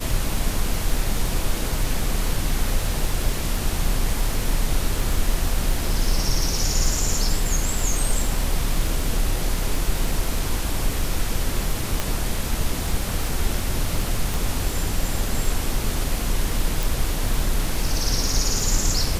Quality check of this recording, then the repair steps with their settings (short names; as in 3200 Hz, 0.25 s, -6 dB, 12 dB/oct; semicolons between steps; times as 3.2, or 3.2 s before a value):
crackle 35/s -26 dBFS
12 pop -8 dBFS
14.34 pop
16.83 pop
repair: de-click